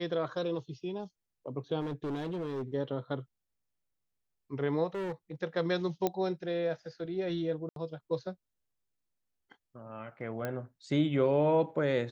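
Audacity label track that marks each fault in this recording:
1.800000	2.630000	clipping −32 dBFS
4.950000	5.340000	clipping −33 dBFS
6.070000	6.070000	click −16 dBFS
7.690000	7.760000	drop-out 72 ms
10.450000	10.450000	click −21 dBFS

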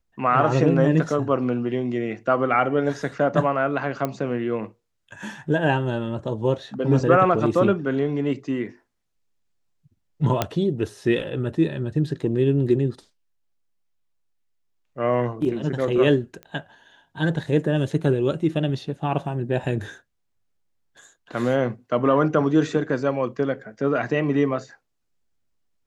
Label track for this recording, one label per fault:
4.050000	4.050000	click −12 dBFS
10.420000	10.420000	click −6 dBFS
16.430000	16.430000	click −25 dBFS

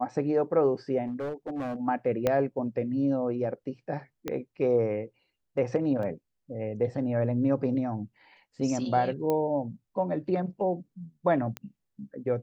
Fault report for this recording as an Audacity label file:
1.060000	1.760000	clipping −29.5 dBFS
2.270000	2.270000	click −12 dBFS
4.280000	4.280000	click −17 dBFS
6.030000	6.030000	drop-out 2.1 ms
9.300000	9.300000	click −16 dBFS
11.570000	11.570000	click −19 dBFS

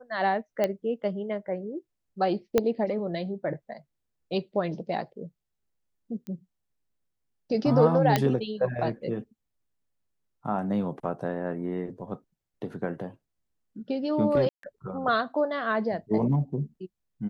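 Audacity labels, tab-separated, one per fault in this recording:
0.640000	0.640000	click −13 dBFS
2.580000	2.580000	click −9 dBFS
6.270000	6.270000	click −27 dBFS
8.160000	8.160000	click −8 dBFS
14.490000	14.630000	drop-out 143 ms

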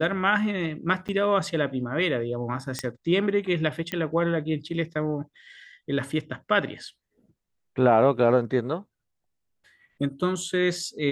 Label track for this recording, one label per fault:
1.080000	1.090000	drop-out 8.2 ms
2.790000	2.790000	click −13 dBFS
3.920000	3.920000	click −15 dBFS

